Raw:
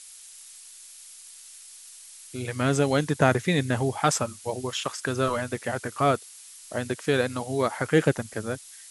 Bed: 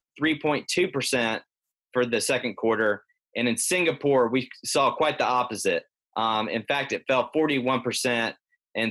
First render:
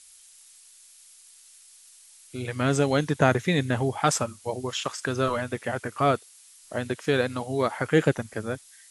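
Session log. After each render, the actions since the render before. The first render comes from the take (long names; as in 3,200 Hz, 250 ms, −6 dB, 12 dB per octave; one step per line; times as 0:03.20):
noise reduction from a noise print 6 dB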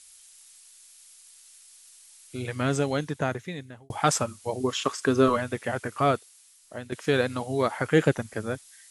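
0:02.36–0:03.90: fade out
0:04.60–0:05.37: hollow resonant body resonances 270/410/1,100 Hz, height 9 dB
0:05.97–0:06.92: fade out, to −10 dB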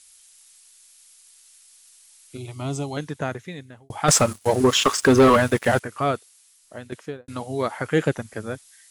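0:02.37–0:02.97: phaser with its sweep stopped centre 330 Hz, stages 8
0:04.08–0:05.80: leveller curve on the samples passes 3
0:06.87–0:07.28: fade out and dull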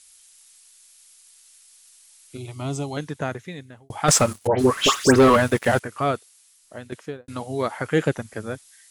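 0:04.47–0:05.16: all-pass dispersion highs, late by 124 ms, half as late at 2,100 Hz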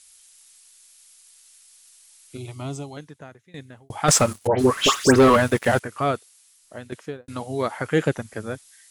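0:02.49–0:03.54: fade out quadratic, to −18.5 dB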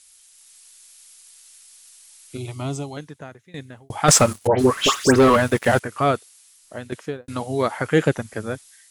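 automatic gain control gain up to 4 dB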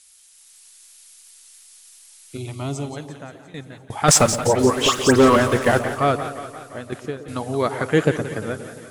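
on a send: echo with a time of its own for lows and highs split 930 Hz, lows 121 ms, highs 175 ms, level −12 dB
on the sum: feedback echo with a swinging delay time 173 ms, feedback 65%, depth 167 cents, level −15 dB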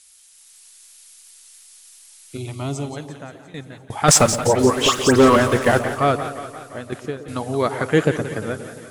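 level +1 dB
brickwall limiter −3 dBFS, peak gain reduction 2 dB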